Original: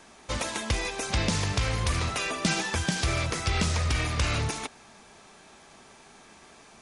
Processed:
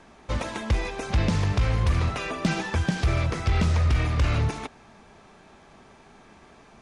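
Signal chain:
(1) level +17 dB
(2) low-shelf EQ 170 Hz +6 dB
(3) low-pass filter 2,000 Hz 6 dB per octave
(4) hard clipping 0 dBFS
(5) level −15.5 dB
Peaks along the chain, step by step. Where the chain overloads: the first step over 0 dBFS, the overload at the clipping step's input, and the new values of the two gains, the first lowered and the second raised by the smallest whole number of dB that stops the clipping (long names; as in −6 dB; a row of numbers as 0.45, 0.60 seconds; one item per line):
+5.5, +6.0, +5.0, 0.0, −15.5 dBFS
step 1, 5.0 dB
step 1 +12 dB, step 5 −10.5 dB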